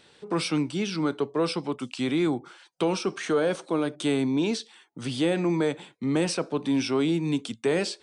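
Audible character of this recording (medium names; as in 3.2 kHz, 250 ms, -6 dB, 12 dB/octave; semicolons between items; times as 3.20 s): noise floor -58 dBFS; spectral tilt -5.5 dB/octave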